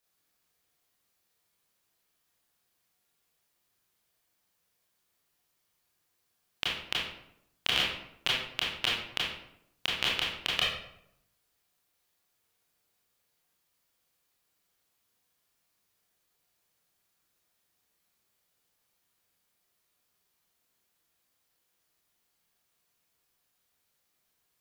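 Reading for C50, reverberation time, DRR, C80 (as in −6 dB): 0.5 dB, 0.75 s, −6.0 dB, 4.5 dB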